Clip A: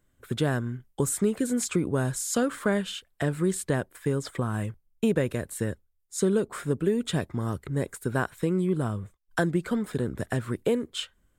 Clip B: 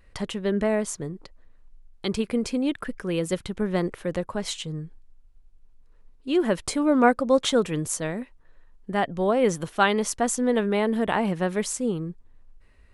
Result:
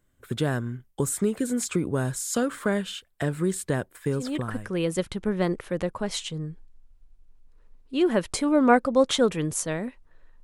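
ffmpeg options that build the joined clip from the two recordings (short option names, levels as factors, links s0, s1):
-filter_complex "[0:a]apad=whole_dur=10.43,atrim=end=10.43,atrim=end=4.74,asetpts=PTS-STARTPTS[s0];[1:a]atrim=start=2.44:end=8.77,asetpts=PTS-STARTPTS[s1];[s0][s1]acrossfade=d=0.64:c1=qsin:c2=qsin"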